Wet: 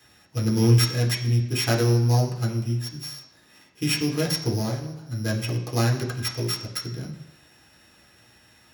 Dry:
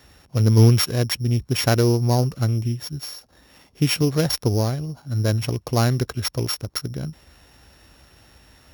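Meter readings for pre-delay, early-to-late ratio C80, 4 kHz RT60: 3 ms, 10.5 dB, 1.0 s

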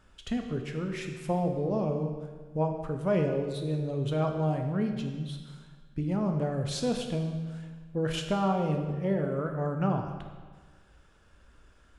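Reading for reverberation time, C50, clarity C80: 1.5 s, 5.5 dB, 7.0 dB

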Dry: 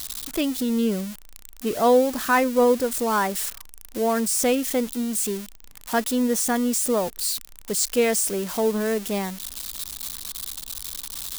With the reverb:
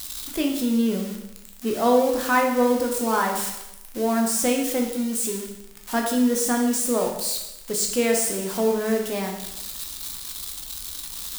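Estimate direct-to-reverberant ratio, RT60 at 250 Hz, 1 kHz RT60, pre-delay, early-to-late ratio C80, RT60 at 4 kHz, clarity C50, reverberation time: 1.0 dB, 0.90 s, 0.90 s, 5 ms, 7.5 dB, 0.85 s, 5.0 dB, 0.90 s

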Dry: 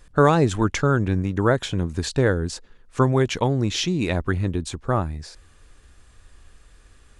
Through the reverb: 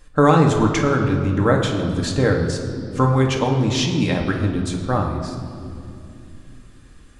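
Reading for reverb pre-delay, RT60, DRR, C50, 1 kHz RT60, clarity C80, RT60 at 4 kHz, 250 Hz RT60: 4 ms, 2.6 s, 0.5 dB, 5.0 dB, 2.2 s, 7.0 dB, 1.8 s, 4.5 s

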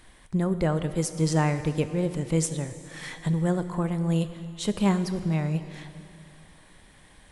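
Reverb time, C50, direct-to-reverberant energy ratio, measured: 2.7 s, 11.5 dB, 10.5 dB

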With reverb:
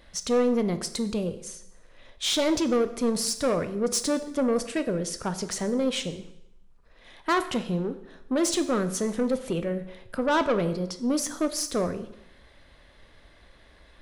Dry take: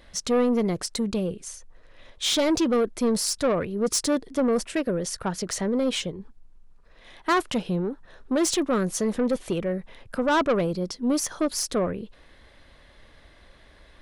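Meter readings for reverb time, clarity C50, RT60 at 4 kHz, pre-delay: 0.80 s, 13.0 dB, 0.75 s, 7 ms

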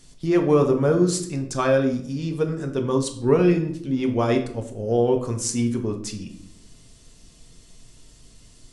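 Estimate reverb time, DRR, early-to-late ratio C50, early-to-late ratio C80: 0.70 s, 3.0 dB, 10.0 dB, 13.5 dB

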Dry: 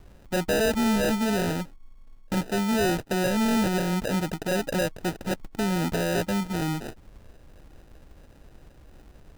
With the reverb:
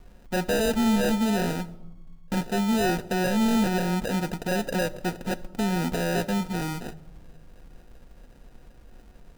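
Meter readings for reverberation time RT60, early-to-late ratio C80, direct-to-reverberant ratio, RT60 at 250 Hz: 1.0 s, 20.0 dB, 7.5 dB, 1.5 s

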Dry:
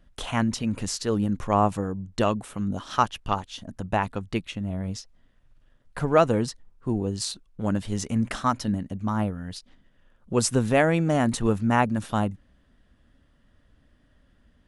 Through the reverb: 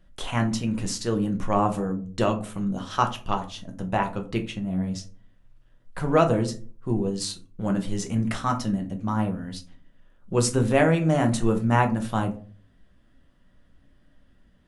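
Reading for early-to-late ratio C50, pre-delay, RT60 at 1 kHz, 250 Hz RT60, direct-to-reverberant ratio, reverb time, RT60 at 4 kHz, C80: 13.5 dB, 3 ms, 0.35 s, 0.55 s, 4.0 dB, 0.40 s, 0.20 s, 19.5 dB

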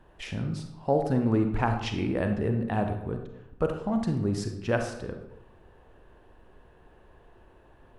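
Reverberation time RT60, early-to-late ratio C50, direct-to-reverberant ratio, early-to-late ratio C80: 0.90 s, 6.5 dB, 5.0 dB, 9.0 dB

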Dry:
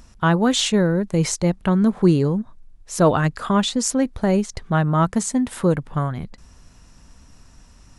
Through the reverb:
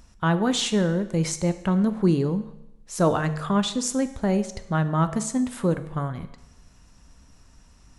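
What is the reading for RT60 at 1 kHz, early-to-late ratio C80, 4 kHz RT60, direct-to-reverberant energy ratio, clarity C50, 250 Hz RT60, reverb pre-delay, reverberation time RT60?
0.90 s, 15.0 dB, 0.85 s, 10.0 dB, 13.0 dB, 0.95 s, 8 ms, 0.85 s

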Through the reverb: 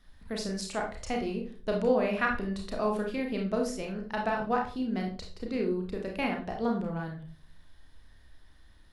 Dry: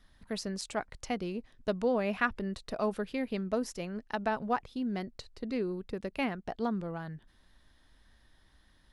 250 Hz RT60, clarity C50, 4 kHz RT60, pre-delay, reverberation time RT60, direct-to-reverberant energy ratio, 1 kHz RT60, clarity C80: 0.55 s, 6.5 dB, 0.30 s, 31 ms, 0.45 s, 0.5 dB, 0.35 s, 12.0 dB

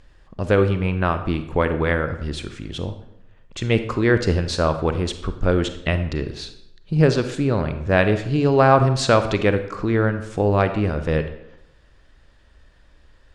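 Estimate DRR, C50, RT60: 9.0 dB, 10.5 dB, 0.80 s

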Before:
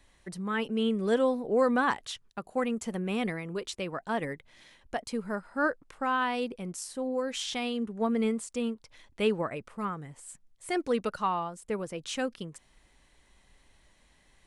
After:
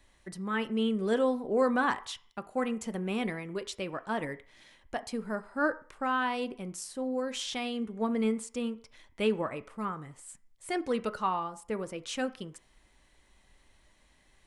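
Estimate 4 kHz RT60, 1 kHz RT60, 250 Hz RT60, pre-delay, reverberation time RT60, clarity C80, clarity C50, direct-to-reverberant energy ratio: 0.65 s, 0.50 s, 0.35 s, 3 ms, 0.45 s, 21.0 dB, 17.5 dB, 10.5 dB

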